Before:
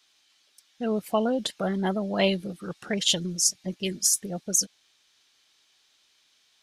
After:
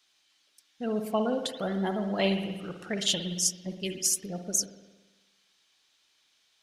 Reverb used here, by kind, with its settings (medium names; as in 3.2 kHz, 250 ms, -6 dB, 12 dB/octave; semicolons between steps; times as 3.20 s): spring tank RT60 1.2 s, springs 56 ms, chirp 75 ms, DRR 6 dB; trim -4 dB